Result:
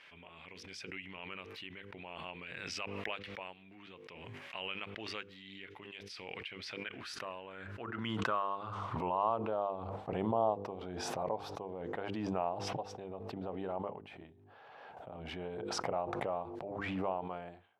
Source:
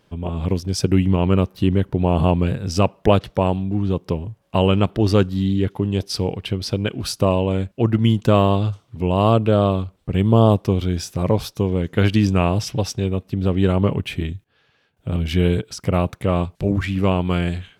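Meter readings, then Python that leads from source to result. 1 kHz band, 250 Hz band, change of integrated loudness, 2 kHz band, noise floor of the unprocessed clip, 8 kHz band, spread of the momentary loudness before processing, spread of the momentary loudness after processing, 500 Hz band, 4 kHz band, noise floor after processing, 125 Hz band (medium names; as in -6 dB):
-12.0 dB, -23.5 dB, -19.5 dB, -11.0 dB, -62 dBFS, -16.5 dB, 8 LU, 16 LU, -18.0 dB, -15.5 dB, -57 dBFS, -29.0 dB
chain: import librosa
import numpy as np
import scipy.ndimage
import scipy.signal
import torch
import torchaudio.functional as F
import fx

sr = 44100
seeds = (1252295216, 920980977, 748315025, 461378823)

y = fx.filter_sweep_bandpass(x, sr, from_hz=2200.0, to_hz=780.0, start_s=6.47, end_s=9.86, q=3.1)
y = fx.hum_notches(y, sr, base_hz=50, count=10)
y = fx.pre_swell(y, sr, db_per_s=21.0)
y = y * librosa.db_to_amplitude(-8.5)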